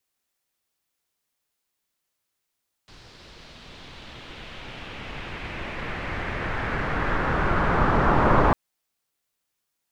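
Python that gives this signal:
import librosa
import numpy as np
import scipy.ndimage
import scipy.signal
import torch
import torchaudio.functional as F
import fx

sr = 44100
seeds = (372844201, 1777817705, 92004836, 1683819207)

y = fx.riser_noise(sr, seeds[0], length_s=5.65, colour='pink', kind='lowpass', start_hz=4700.0, end_hz=1100.0, q=2.0, swell_db=33.5, law='exponential')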